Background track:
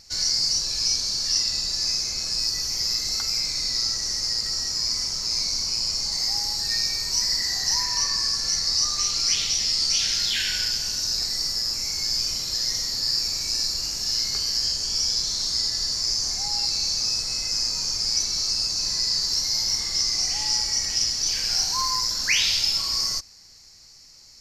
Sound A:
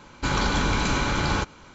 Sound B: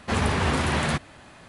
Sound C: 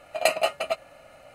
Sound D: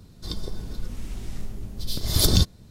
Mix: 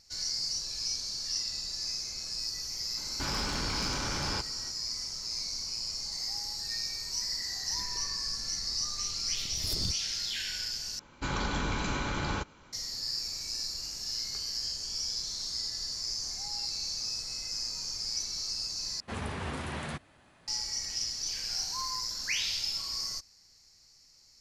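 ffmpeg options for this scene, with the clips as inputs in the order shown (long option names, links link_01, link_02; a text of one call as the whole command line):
ffmpeg -i bed.wav -i cue0.wav -i cue1.wav -i cue2.wav -i cue3.wav -filter_complex "[1:a]asplit=2[link_01][link_02];[0:a]volume=-10.5dB[link_03];[link_01]asoftclip=type=tanh:threshold=-27.5dB[link_04];[link_03]asplit=3[link_05][link_06][link_07];[link_05]atrim=end=10.994[link_08];[link_02]atrim=end=1.74,asetpts=PTS-STARTPTS,volume=-8.5dB[link_09];[link_06]atrim=start=12.726:end=19.004[link_10];[2:a]atrim=end=1.48,asetpts=PTS-STARTPTS,volume=-13dB[link_11];[link_07]atrim=start=20.476[link_12];[link_04]atrim=end=1.74,asetpts=PTS-STARTPTS,volume=-4.5dB,afade=type=in:duration=0.004:curve=hsin,afade=type=out:start_time=1.736:duration=0.004:curve=hsin,adelay=2970[link_13];[4:a]atrim=end=2.7,asetpts=PTS-STARTPTS,volume=-17.5dB,afade=type=in:duration=0.004:curve=hsin,afade=type=out:start_time=2.696:duration=0.004:curve=hsin,adelay=7480[link_14];[link_08][link_09]acrossfade=duration=0.004:curve1=hsin:curve2=hsin[link_15];[link_15][link_10]acrossfade=duration=0.004:curve1=hsin:curve2=hsin[link_16];[link_16][link_11]acrossfade=duration=0.004:curve1=hsin:curve2=hsin[link_17];[link_17][link_12]acrossfade=duration=0.004:curve1=hsin:curve2=hsin[link_18];[link_18][link_13][link_14]amix=inputs=3:normalize=0" out.wav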